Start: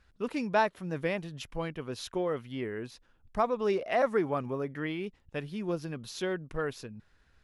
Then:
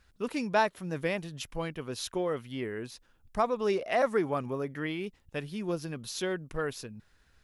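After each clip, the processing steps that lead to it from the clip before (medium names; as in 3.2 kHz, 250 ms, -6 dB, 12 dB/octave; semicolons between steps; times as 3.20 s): treble shelf 5.4 kHz +9 dB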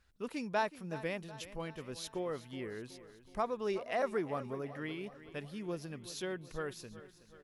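feedback delay 372 ms, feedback 55%, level -15.5 dB; trim -7 dB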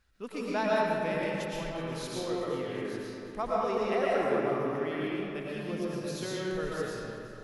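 reverberation RT60 2.3 s, pre-delay 75 ms, DRR -6 dB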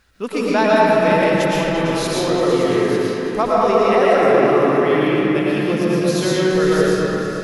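bass shelf 64 Hz -9 dB; in parallel at +1 dB: peak limiter -24.5 dBFS, peak gain reduction 8.5 dB; on the sum: delay with an opening low-pass 113 ms, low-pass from 400 Hz, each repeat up 2 oct, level -3 dB; trim +8.5 dB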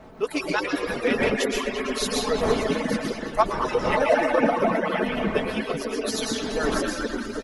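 harmonic-percussive separation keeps percussive; wind noise 610 Hz -36 dBFS; comb 4.6 ms, depth 46%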